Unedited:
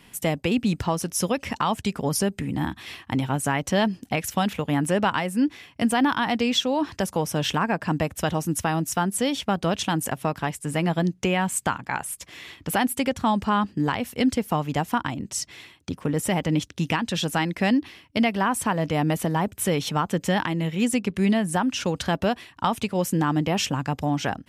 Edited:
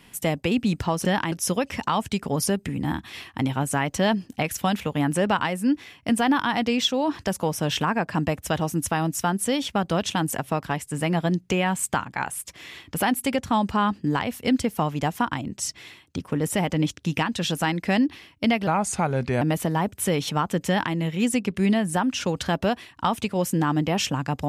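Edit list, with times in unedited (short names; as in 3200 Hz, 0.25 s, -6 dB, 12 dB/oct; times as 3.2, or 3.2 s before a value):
18.4–19.01 speed 82%
20.27–20.54 copy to 1.05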